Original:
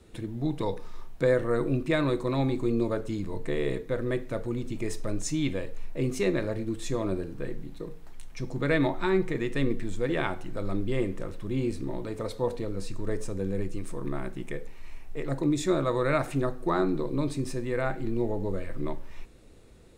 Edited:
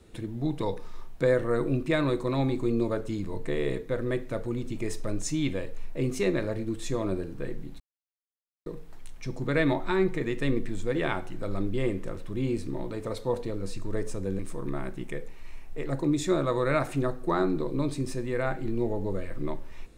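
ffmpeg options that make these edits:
ffmpeg -i in.wav -filter_complex "[0:a]asplit=3[link_01][link_02][link_03];[link_01]atrim=end=7.8,asetpts=PTS-STARTPTS,afade=type=out:start_time=7.796:duration=0.004:curve=hsin,apad=pad_dur=0.86[link_04];[link_02]atrim=start=7.8:end=13.532,asetpts=PTS-STARTPTS,afade=type=in:duration=0.004:curve=hsin[link_05];[link_03]atrim=start=13.778[link_06];[link_04][link_05]concat=n=2:v=0:a=1[link_07];[link_07][link_06]acrossfade=duration=0.004:curve1=hsin:curve2=hsin" out.wav

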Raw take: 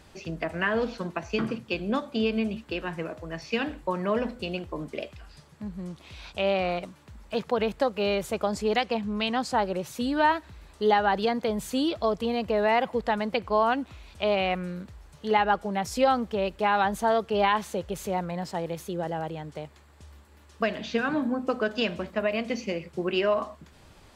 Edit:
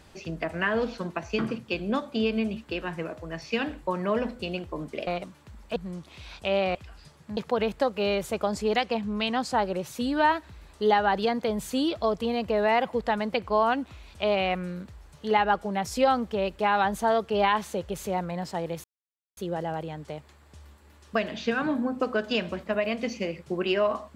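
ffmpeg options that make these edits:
ffmpeg -i in.wav -filter_complex "[0:a]asplit=6[link_01][link_02][link_03][link_04][link_05][link_06];[link_01]atrim=end=5.072[link_07];[link_02]atrim=start=6.678:end=7.372[link_08];[link_03]atrim=start=5.688:end=6.682[link_09];[link_04]atrim=start=5.068:end=5.692[link_10];[link_05]atrim=start=7.368:end=18.84,asetpts=PTS-STARTPTS,afade=type=out:start_time=11.468:duration=0.004:curve=hsin,apad=pad_dur=0.53[link_11];[link_06]atrim=start=18.84,asetpts=PTS-STARTPTS,afade=type=in:duration=0.004:curve=hsin[link_12];[link_07][link_08]acrossfade=duration=0.004:curve1=hsin:curve2=hsin[link_13];[link_13][link_09]acrossfade=duration=0.004:curve1=hsin:curve2=hsin[link_14];[link_14][link_10]acrossfade=duration=0.004:curve1=hsin:curve2=hsin[link_15];[link_11][link_12]concat=n=2:v=0:a=1[link_16];[link_15][link_16]acrossfade=duration=0.004:curve1=hsin:curve2=hsin" out.wav

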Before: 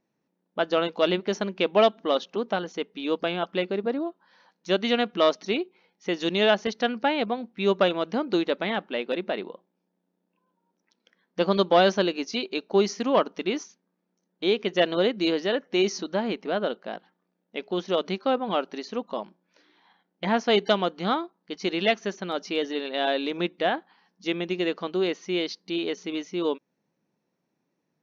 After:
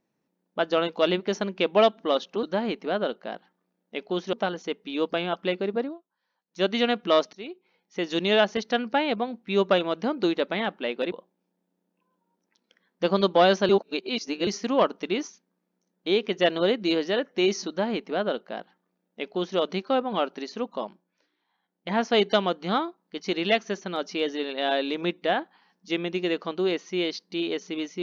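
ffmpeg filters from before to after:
ffmpeg -i in.wav -filter_complex "[0:a]asplit=11[link_01][link_02][link_03][link_04][link_05][link_06][link_07][link_08][link_09][link_10][link_11];[link_01]atrim=end=2.432[link_12];[link_02]atrim=start=16.038:end=17.942[link_13];[link_03]atrim=start=2.428:end=4.08,asetpts=PTS-STARTPTS,afade=type=out:start_time=1.472:duration=0.18:silence=0.1[link_14];[link_04]atrim=start=4.08:end=4.57,asetpts=PTS-STARTPTS,volume=-20dB[link_15];[link_05]atrim=start=4.57:end=5.43,asetpts=PTS-STARTPTS,afade=type=in:duration=0.18:silence=0.1,afade=type=out:start_time=0.856:duration=0.004:curve=hsin:silence=0.133352[link_16];[link_06]atrim=start=5.43:end=9.222,asetpts=PTS-STARTPTS,afade=type=in:duration=0.82:silence=0.133352[link_17];[link_07]atrim=start=9.478:end=12.052[link_18];[link_08]atrim=start=12.048:end=12.832,asetpts=PTS-STARTPTS,areverse[link_19];[link_09]atrim=start=12.828:end=19.66,asetpts=PTS-STARTPTS,afade=type=out:start_time=6.342:duration=0.49:silence=0.188365[link_20];[link_10]atrim=start=19.66:end=19.92,asetpts=PTS-STARTPTS,volume=-14.5dB[link_21];[link_11]atrim=start=19.92,asetpts=PTS-STARTPTS,afade=type=in:duration=0.49:silence=0.188365[link_22];[link_12][link_13]acrossfade=duration=0.004:curve1=hsin:curve2=hsin[link_23];[link_14][link_15][link_16][link_17]concat=n=4:v=0:a=1[link_24];[link_23][link_24]acrossfade=duration=0.004:curve1=hsin:curve2=hsin[link_25];[link_25][link_18]acrossfade=duration=0.004:curve1=hsin:curve2=hsin[link_26];[link_26][link_19]acrossfade=duration=0.004:curve1=hsin:curve2=hsin[link_27];[link_20][link_21][link_22]concat=n=3:v=0:a=1[link_28];[link_27][link_28]acrossfade=duration=0.004:curve1=hsin:curve2=hsin" out.wav

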